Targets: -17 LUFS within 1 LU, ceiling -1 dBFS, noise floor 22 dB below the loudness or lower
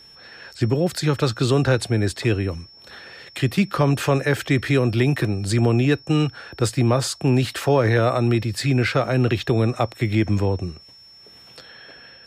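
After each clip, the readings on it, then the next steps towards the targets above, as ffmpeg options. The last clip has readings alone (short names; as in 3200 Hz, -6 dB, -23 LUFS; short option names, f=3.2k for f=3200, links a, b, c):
steady tone 5400 Hz; tone level -45 dBFS; loudness -21.0 LUFS; peak -6.0 dBFS; loudness target -17.0 LUFS
-> -af "bandreject=f=5.4k:w=30"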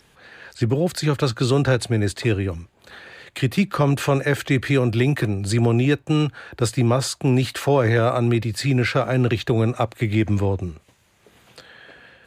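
steady tone none; loudness -21.0 LUFS; peak -6.0 dBFS; loudness target -17.0 LUFS
-> -af "volume=4dB"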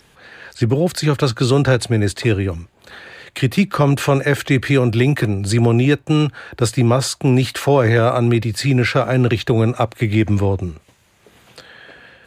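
loudness -17.0 LUFS; peak -2.0 dBFS; noise floor -55 dBFS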